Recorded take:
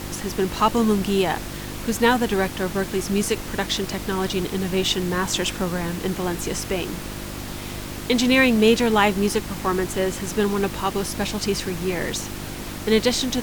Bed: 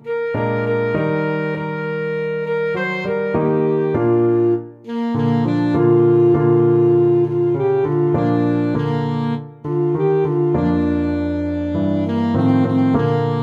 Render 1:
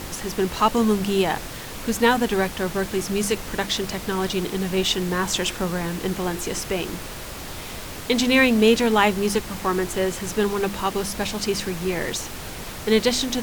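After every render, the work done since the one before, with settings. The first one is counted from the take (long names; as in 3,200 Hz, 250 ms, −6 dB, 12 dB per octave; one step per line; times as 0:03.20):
hum removal 50 Hz, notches 7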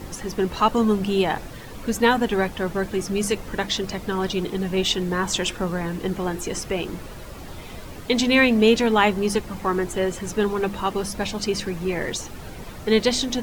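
broadband denoise 10 dB, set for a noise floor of −35 dBFS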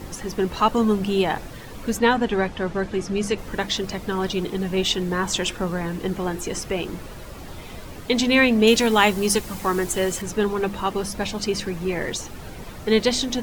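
0:01.99–0:03.38: high-frequency loss of the air 56 metres
0:08.67–0:10.22: high-shelf EQ 4,100 Hz +11.5 dB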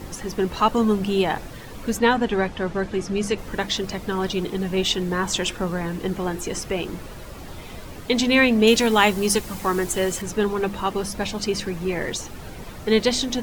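no processing that can be heard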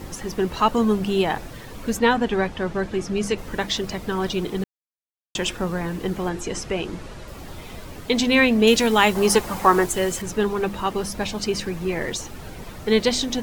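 0:04.64–0:05.35: silence
0:06.29–0:07.28: low-pass filter 8,500 Hz
0:09.15–0:09.86: parametric band 880 Hz +9.5 dB 2.2 octaves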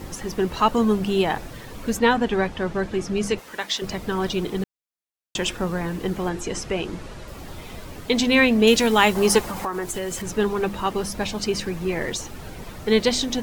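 0:03.39–0:03.82: high-pass filter 980 Hz 6 dB per octave
0:09.50–0:10.26: downward compressor 4 to 1, threshold −25 dBFS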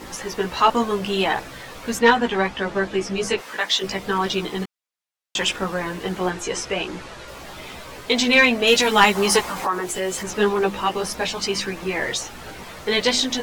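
multi-voice chorus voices 2, 0.72 Hz, delay 16 ms, depth 1.1 ms
mid-hump overdrive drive 14 dB, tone 5,900 Hz, clips at −1.5 dBFS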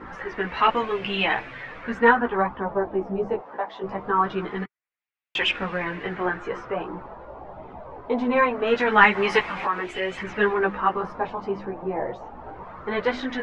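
auto-filter low-pass sine 0.23 Hz 790–2,500 Hz
flanger 0.39 Hz, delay 0.5 ms, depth 9.2 ms, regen −47%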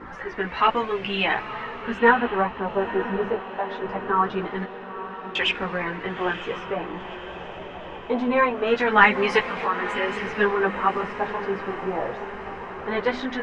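feedback delay with all-pass diffusion 950 ms, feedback 62%, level −12 dB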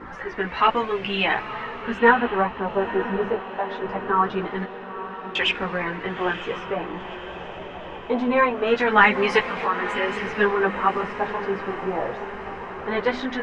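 level +1 dB
brickwall limiter −3 dBFS, peak gain reduction 2.5 dB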